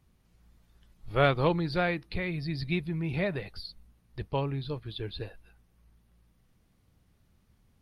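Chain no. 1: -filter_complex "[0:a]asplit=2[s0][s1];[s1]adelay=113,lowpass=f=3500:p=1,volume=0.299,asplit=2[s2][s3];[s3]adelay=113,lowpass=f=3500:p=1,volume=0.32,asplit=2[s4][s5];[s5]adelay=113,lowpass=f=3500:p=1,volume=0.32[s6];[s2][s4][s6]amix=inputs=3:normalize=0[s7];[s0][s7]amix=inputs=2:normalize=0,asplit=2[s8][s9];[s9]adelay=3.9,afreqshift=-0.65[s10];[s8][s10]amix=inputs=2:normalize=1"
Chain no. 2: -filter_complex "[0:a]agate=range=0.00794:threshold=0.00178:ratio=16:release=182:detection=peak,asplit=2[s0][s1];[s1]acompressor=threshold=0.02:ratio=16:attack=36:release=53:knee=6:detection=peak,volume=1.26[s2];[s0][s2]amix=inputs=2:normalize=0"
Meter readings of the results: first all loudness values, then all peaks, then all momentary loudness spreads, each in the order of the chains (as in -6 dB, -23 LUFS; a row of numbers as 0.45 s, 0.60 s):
-33.0 LUFS, -26.5 LUFS; -13.0 dBFS, -9.0 dBFS; 16 LU, 13 LU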